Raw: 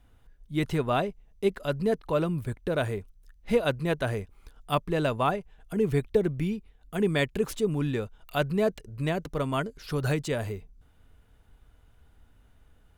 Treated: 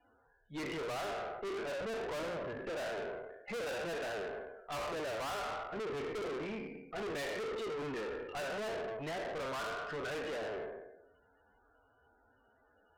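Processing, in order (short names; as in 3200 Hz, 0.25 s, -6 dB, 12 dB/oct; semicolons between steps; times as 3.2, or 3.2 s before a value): spectral trails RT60 0.99 s; HPF 180 Hz 6 dB/oct; gate with hold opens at -60 dBFS; tone controls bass -13 dB, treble -10 dB; notches 60/120/180/240/300/360/420 Hz; loudest bins only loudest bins 32; tube stage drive 41 dB, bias 0.4; gain +3.5 dB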